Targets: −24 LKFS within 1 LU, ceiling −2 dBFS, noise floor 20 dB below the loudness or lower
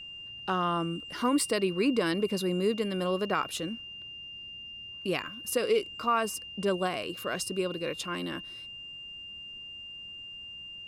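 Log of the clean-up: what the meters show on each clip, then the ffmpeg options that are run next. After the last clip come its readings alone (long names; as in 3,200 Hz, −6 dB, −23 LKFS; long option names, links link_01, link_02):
interfering tone 2,800 Hz; level of the tone −41 dBFS; integrated loudness −31.5 LKFS; sample peak −14.0 dBFS; target loudness −24.0 LKFS
→ -af "bandreject=frequency=2800:width=30"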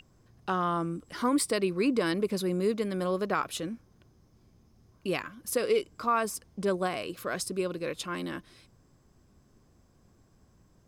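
interfering tone none found; integrated loudness −30.5 LKFS; sample peak −14.5 dBFS; target loudness −24.0 LKFS
→ -af "volume=6.5dB"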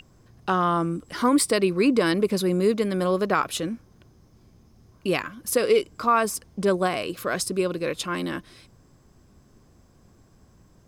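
integrated loudness −24.0 LKFS; sample peak −8.0 dBFS; background noise floor −57 dBFS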